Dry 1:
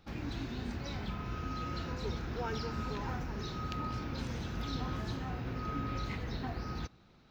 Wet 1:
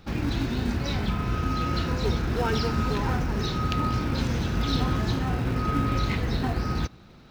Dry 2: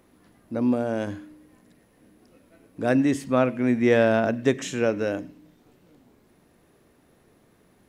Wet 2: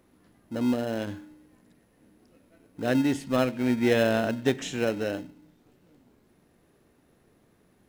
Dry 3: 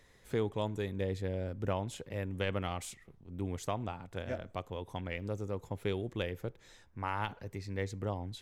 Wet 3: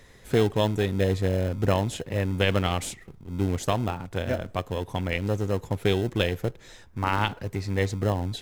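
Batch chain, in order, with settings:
in parallel at -11 dB: sample-and-hold 38×; on the sum: dynamic EQ 3400 Hz, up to +5 dB, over -48 dBFS, Q 1.4; match loudness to -27 LUFS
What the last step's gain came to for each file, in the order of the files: +10.5, -4.5, +9.5 dB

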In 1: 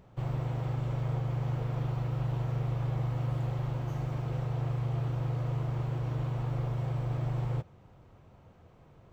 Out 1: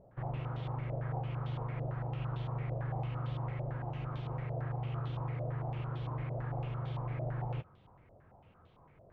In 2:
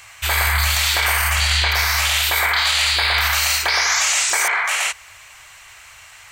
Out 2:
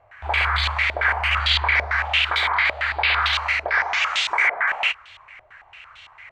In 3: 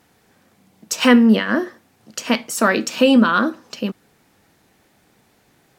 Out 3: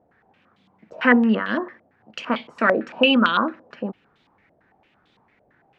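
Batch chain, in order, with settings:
stepped low-pass 8.9 Hz 630–3500 Hz; gain -6 dB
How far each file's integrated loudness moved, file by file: -5.5, -3.5, -3.5 LU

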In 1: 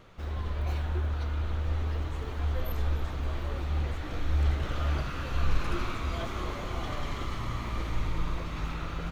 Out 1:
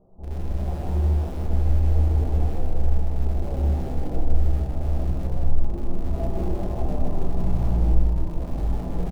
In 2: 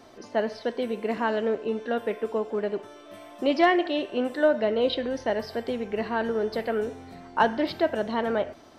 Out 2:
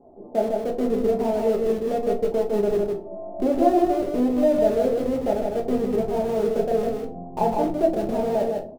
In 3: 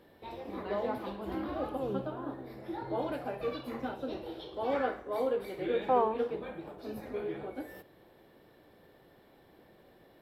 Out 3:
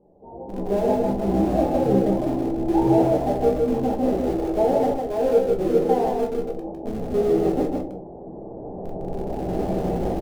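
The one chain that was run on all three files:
recorder AGC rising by 8.6 dB/s; elliptic low-pass 810 Hz, stop band 80 dB; dynamic EQ 170 Hz, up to +4 dB, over -47 dBFS, Q 4.1; in parallel at -11.5 dB: Schmitt trigger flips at -28.5 dBFS; on the sum: de-hum 79.04 Hz, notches 12; on a send: echo 0.155 s -3.5 dB; on the sum: shoebox room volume 190 m³, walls furnished, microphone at 1.3 m; normalise peaks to -6 dBFS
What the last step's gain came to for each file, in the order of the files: -3.5, -1.0, +1.0 dB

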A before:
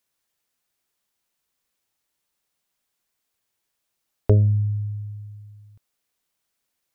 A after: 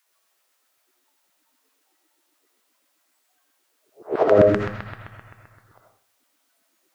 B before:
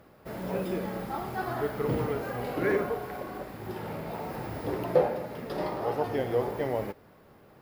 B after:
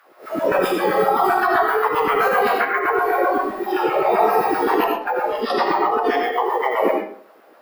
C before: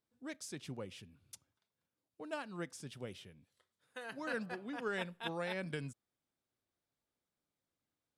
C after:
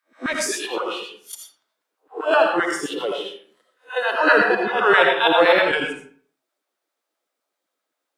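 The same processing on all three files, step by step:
spectral swells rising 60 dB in 0.35 s; LFO high-pass saw down 7.7 Hz 260–1600 Hz; low shelf 130 Hz -11.5 dB; negative-ratio compressor -32 dBFS, ratio -1; spectral noise reduction 14 dB; digital reverb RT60 0.5 s, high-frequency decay 0.7×, pre-delay 40 ms, DRR 1 dB; match loudness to -19 LUFS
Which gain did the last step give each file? +15.0, +13.0, +20.0 dB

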